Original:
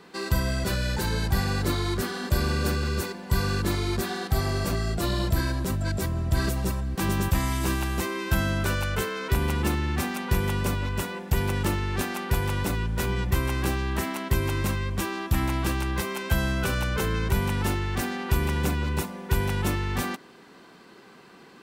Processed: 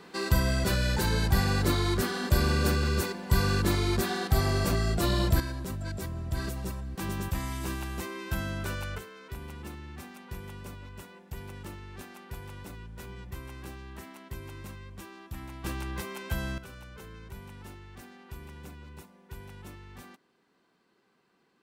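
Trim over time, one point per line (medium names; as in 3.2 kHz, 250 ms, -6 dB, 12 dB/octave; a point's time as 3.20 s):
0 dB
from 5.40 s -8 dB
from 8.98 s -16.5 dB
from 15.64 s -8 dB
from 16.58 s -20 dB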